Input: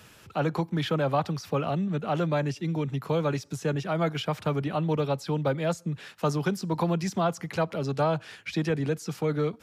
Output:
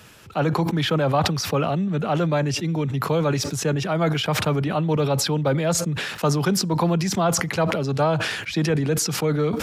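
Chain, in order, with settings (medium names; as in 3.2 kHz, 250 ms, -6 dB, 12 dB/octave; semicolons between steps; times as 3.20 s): decay stretcher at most 40 dB/s; trim +4.5 dB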